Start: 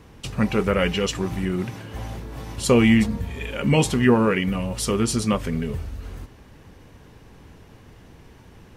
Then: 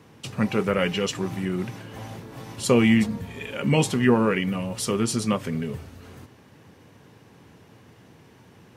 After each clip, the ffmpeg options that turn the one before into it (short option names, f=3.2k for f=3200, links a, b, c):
-af "highpass=f=100:w=0.5412,highpass=f=100:w=1.3066,volume=-2dB"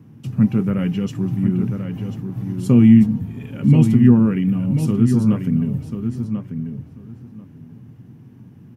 -filter_complex "[0:a]equalizer=f=125:t=o:w=1:g=12,equalizer=f=250:t=o:w=1:g=9,equalizer=f=500:t=o:w=1:g=-8,equalizer=f=1k:t=o:w=1:g=-5,equalizer=f=2k:t=o:w=1:g=-6,equalizer=f=4k:t=o:w=1:g=-10,equalizer=f=8k:t=o:w=1:g=-9,asplit=2[a][b];[b]adelay=1040,lowpass=f=3.6k:p=1,volume=-7.5dB,asplit=2[c][d];[d]adelay=1040,lowpass=f=3.6k:p=1,volume=0.16,asplit=2[e][f];[f]adelay=1040,lowpass=f=3.6k:p=1,volume=0.16[g];[a][c][e][g]amix=inputs=4:normalize=0,volume=-1dB"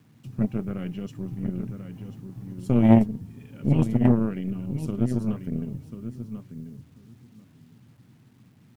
-af "aeval=exprs='0.891*(cos(1*acos(clip(val(0)/0.891,-1,1)))-cos(1*PI/2))+0.355*(cos(2*acos(clip(val(0)/0.891,-1,1)))-cos(2*PI/2))+0.178*(cos(3*acos(clip(val(0)/0.891,-1,1)))-cos(3*PI/2))+0.224*(cos(4*acos(clip(val(0)/0.891,-1,1)))-cos(4*PI/2))+0.0316*(cos(6*acos(clip(val(0)/0.891,-1,1)))-cos(6*PI/2))':c=same,acrusher=bits=9:mix=0:aa=0.000001,volume=-4.5dB"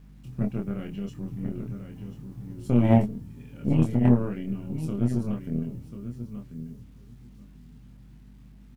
-filter_complex "[0:a]aeval=exprs='val(0)+0.00447*(sin(2*PI*50*n/s)+sin(2*PI*2*50*n/s)/2+sin(2*PI*3*50*n/s)/3+sin(2*PI*4*50*n/s)/4+sin(2*PI*5*50*n/s)/5)':c=same,asplit=2[a][b];[b]adelay=25,volume=-3.5dB[c];[a][c]amix=inputs=2:normalize=0,volume=-3dB"